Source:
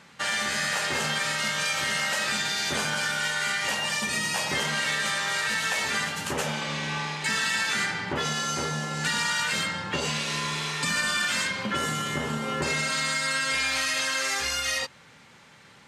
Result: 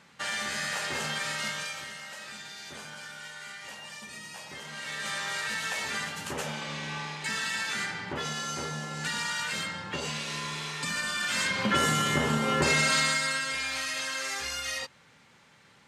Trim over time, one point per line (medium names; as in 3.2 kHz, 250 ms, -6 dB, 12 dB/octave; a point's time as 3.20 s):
1.48 s -5 dB
1.97 s -15.5 dB
4.62 s -15.5 dB
5.14 s -5.5 dB
11.17 s -5.5 dB
11.66 s +3 dB
12.96 s +3 dB
13.53 s -6 dB